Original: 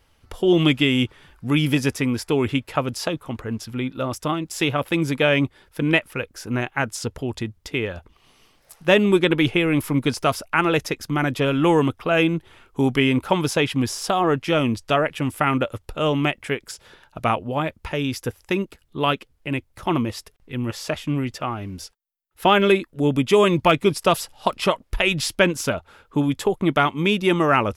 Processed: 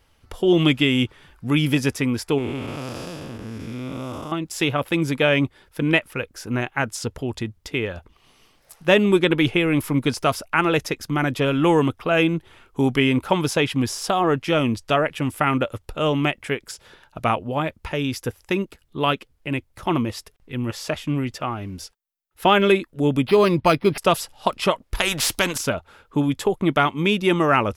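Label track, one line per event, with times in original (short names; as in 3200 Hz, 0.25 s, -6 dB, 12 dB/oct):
2.380000	4.320000	time blur width 0.392 s
23.270000	23.980000	decimation joined by straight lines rate divided by 6×
24.950000	25.580000	spectral compressor 2:1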